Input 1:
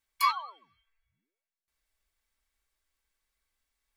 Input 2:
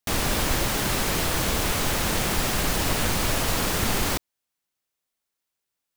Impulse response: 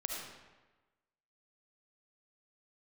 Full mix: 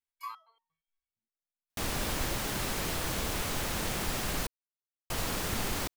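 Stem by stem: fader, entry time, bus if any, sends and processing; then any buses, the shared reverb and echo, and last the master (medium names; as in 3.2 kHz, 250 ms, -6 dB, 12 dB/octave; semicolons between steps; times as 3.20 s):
-5.0 dB, 0.00 s, no send, resonator arpeggio 8.6 Hz 80–920 Hz
-8.5 dB, 1.70 s, muted 4.47–5.10 s, no send, none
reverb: none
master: none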